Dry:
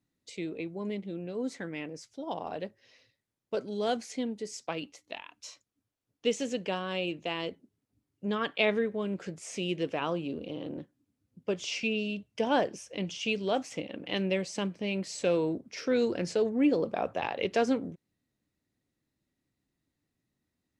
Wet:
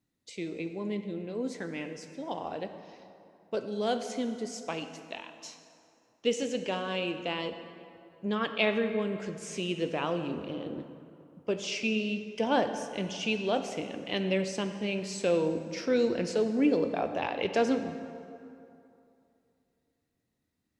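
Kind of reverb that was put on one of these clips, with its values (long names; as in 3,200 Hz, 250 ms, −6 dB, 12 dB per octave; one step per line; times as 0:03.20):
dense smooth reverb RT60 2.7 s, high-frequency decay 0.6×, DRR 7.5 dB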